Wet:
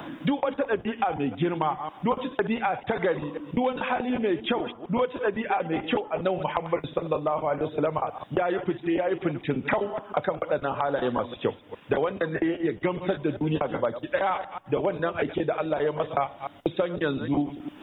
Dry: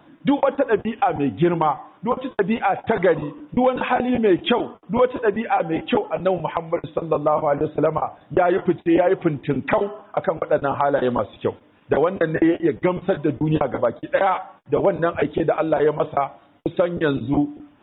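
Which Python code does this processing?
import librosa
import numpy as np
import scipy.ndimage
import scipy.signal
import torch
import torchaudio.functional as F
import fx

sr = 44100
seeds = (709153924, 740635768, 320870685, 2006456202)

y = fx.reverse_delay(x, sr, ms=135, wet_db=-13.5)
y = fx.rider(y, sr, range_db=10, speed_s=0.5)
y = fx.high_shelf(y, sr, hz=2900.0, db=9.0)
y = fx.band_squash(y, sr, depth_pct=70)
y = y * 10.0 ** (-7.5 / 20.0)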